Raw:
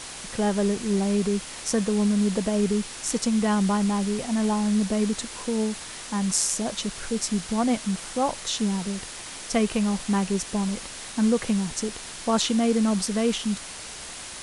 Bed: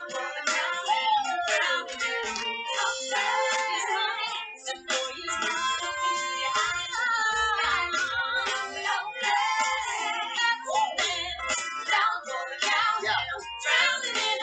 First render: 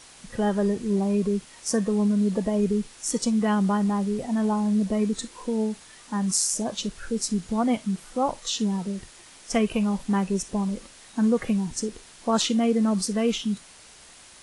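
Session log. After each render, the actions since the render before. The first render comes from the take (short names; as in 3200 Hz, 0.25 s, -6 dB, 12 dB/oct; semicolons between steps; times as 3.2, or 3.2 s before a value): noise print and reduce 11 dB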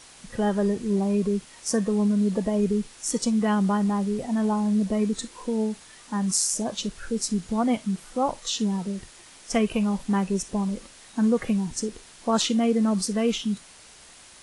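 nothing audible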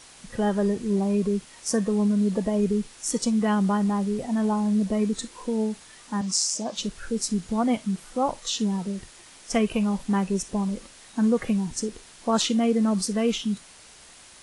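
6.21–6.76 speaker cabinet 220–8000 Hz, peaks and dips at 400 Hz -6 dB, 1600 Hz -5 dB, 5100 Hz +5 dB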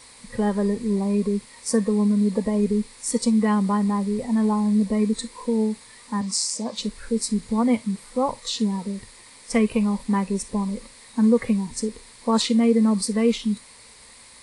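ripple EQ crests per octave 0.95, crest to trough 9 dB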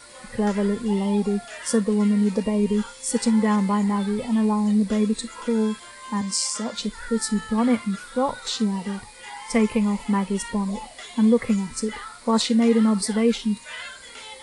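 add bed -13.5 dB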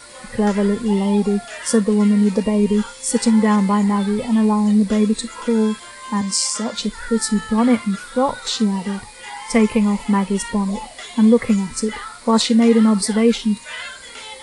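gain +5 dB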